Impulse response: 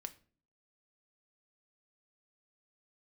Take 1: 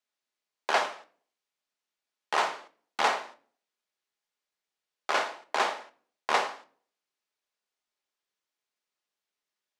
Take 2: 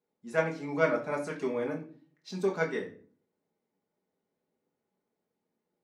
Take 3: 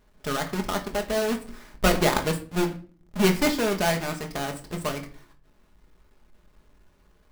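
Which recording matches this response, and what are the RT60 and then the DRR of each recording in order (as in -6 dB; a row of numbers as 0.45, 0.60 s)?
1; 0.45, 0.45, 0.45 s; 8.0, -2.0, 3.0 dB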